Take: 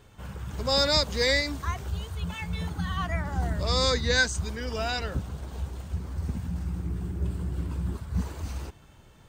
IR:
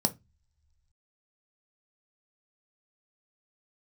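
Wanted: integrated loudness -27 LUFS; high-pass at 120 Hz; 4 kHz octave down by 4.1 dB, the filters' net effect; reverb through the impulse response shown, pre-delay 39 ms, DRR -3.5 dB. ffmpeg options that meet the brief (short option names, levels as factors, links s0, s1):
-filter_complex "[0:a]highpass=120,equalizer=f=4000:t=o:g=-5,asplit=2[s0][s1];[1:a]atrim=start_sample=2205,adelay=39[s2];[s1][s2]afir=irnorm=-1:irlink=0,volume=0.668[s3];[s0][s3]amix=inputs=2:normalize=0,volume=0.631"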